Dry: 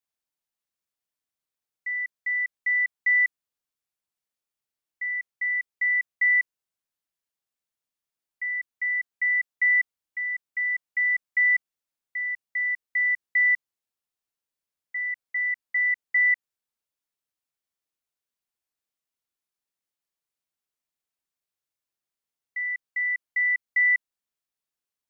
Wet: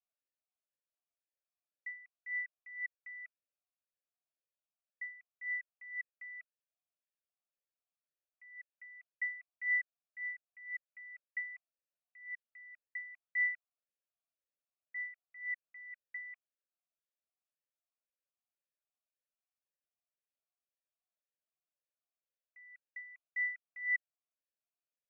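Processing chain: talking filter a-e 1.9 Hz; trim +1 dB

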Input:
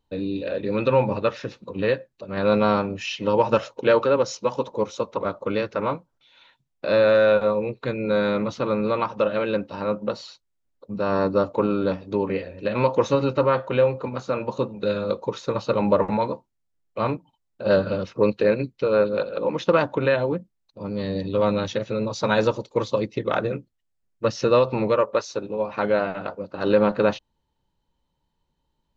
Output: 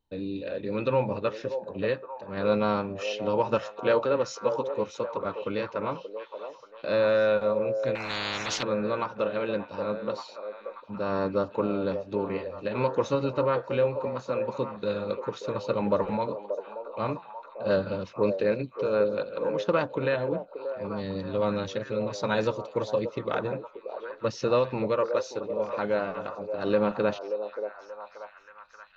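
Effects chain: repeats whose band climbs or falls 581 ms, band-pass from 550 Hz, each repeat 0.7 oct, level -6 dB; 7.95–8.63 s: spectrum-flattening compressor 10:1; trim -6 dB

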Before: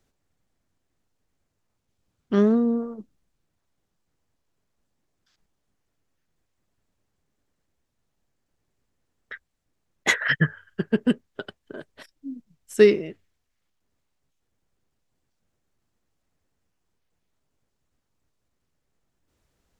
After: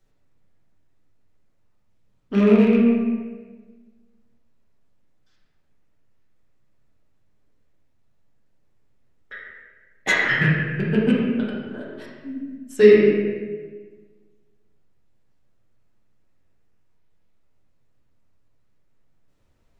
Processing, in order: rattle on loud lows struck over -27 dBFS, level -20 dBFS; reverberation RT60 1.4 s, pre-delay 5 ms, DRR -7 dB; trim -4 dB

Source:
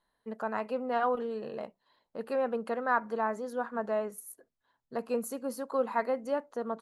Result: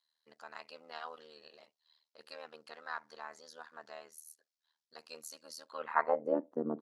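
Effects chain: AM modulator 78 Hz, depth 95%; band-pass sweep 4.9 kHz -> 290 Hz, 5.62–6.40 s; trim +10.5 dB

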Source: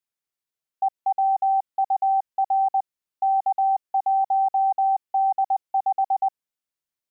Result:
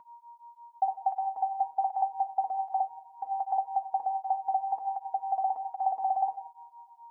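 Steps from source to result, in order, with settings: two-slope reverb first 0.6 s, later 2.7 s, from -28 dB, DRR 5.5 dB; whistle 940 Hz -45 dBFS; cancelling through-zero flanger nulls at 1.3 Hz, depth 2.4 ms

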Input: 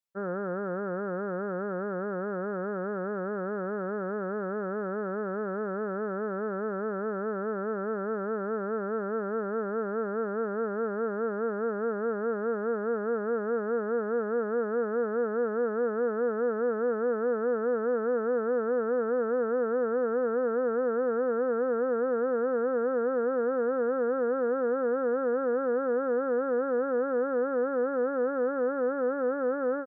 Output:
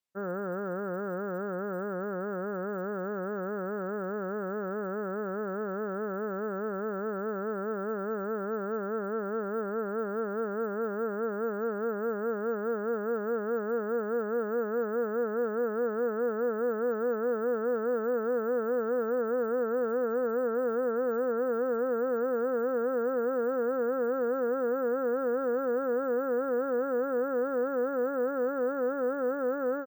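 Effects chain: careless resampling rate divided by 2×, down none, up hold; trim -1.5 dB

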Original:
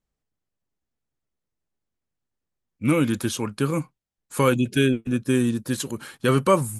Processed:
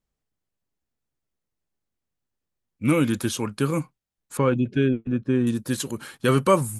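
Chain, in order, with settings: 4.37–5.47 s: tape spacing loss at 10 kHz 32 dB

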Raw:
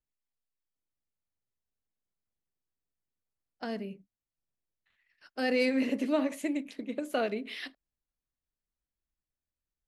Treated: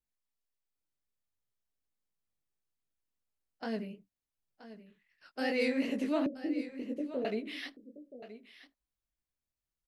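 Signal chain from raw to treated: chorus 2.7 Hz, delay 17 ms, depth 7.5 ms; in parallel at -2.5 dB: peak limiter -25.5 dBFS, peak gain reduction 7 dB; 6.26–7.25 s: on the sum: steep low-pass 560 Hz 48 dB/octave; delay 976 ms -14.5 dB; trim -3.5 dB

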